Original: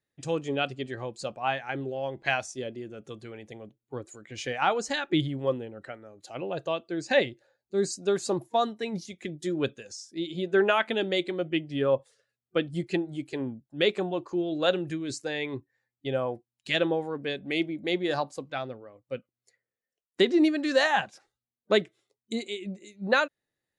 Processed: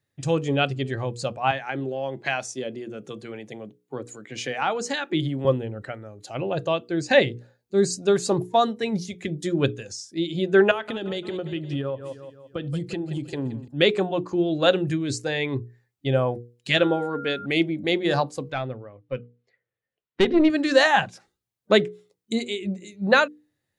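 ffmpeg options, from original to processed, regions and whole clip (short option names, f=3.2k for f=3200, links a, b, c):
-filter_complex "[0:a]asettb=1/sr,asplit=3[a][b][c];[a]atrim=end=1.514[d];[b]atrim=start=1.51:end=5.45,asetpts=PTS-STARTPTS,afade=t=in:d=0.004:c=qsin,afade=t=out:st=3.936:d=0.004:c=qsin,highpass=f=160:w=0.5412,highpass=f=160:w=1.3066,acompressor=threshold=-34dB:ratio=1.5:attack=3.2:release=140:knee=1:detection=peak[e];[c]atrim=start=5.446[f];[d][e]acrossfade=d=0.004:c1=hsin:c2=qsin[g];[g][f]acrossfade=d=0.004:c1=qsin:c2=hsin,asettb=1/sr,asplit=3[h][i][j];[h]atrim=end=10.714[k];[i]atrim=start=10.71:end=13.68,asetpts=PTS-STARTPTS,afade=t=in:d=0.004:c=qsin,afade=t=out:st=2.966:d=0.004:c=qsin,equalizer=f=2.2k:t=o:w=0.26:g=-7.5,aecho=1:1:172|344|516|688:0.126|0.0617|0.0302|0.0148,atrim=end_sample=130977,acompressor=threshold=-31dB:ratio=12:attack=3.2:release=140:knee=1:detection=peak[l];[j]atrim=start=13.676[m];[k][l]acrossfade=d=0.004:c1=hsin:c2=qsin[n];[n][m]acrossfade=d=0.004:c1=qsin:c2=hsin,asettb=1/sr,asplit=3[o][p][q];[o]atrim=end=16.774[r];[p]atrim=start=16.77:end=17.46,asetpts=PTS-STARTPTS,afade=t=in:d=0.004:c=qsin,afade=t=out:st=0.686:d=0.004:c=qsin,equalizer=f=130:w=2.3:g=-9.5,aeval=exprs='val(0)+0.00891*sin(2*PI*1400*n/s)':c=same[s];[q]atrim=start=17.456[t];[r][s]acrossfade=d=0.004:c1=hsin:c2=qsin[u];[u][t]acrossfade=d=0.004:c1=qsin:c2=hsin,asettb=1/sr,asplit=3[v][w][x];[v]atrim=end=18.534[y];[w]atrim=start=18.53:end=20.5,asetpts=PTS-STARTPTS,afade=t=in:d=0.004:c=qsin,afade=t=out:st=1.966:d=0.004:c=qsin,lowpass=f=3.6k:w=0.5412,lowpass=f=3.6k:w=1.3066,aeval=exprs='(tanh(6.31*val(0)+0.4)-tanh(0.4))/6.31':c=same[z];[x]atrim=start=20.496[aa];[y][z]acrossfade=d=0.004:c1=hsin:c2=qsin[ab];[ab][aa]acrossfade=d=0.004:c1=qsin:c2=hsin,equalizer=f=110:w=1.3:g=10,bandreject=f=60:t=h:w=6,bandreject=f=120:t=h:w=6,bandreject=f=180:t=h:w=6,bandreject=f=240:t=h:w=6,bandreject=f=300:t=h:w=6,bandreject=f=360:t=h:w=6,bandreject=f=420:t=h:w=6,bandreject=f=480:t=h:w=6,volume=5.5dB"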